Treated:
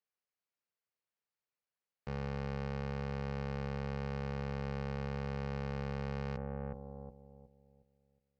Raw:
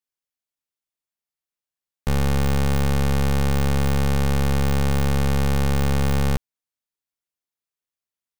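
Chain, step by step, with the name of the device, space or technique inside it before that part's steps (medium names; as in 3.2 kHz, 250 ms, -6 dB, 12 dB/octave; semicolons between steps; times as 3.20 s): analogue delay pedal into a guitar amplifier (bucket-brigade echo 364 ms, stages 2048, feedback 38%, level -16.5 dB; valve stage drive 38 dB, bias 0.75; cabinet simulation 89–4500 Hz, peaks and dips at 290 Hz -8 dB, 470 Hz +4 dB, 3.5 kHz -10 dB); trim +4 dB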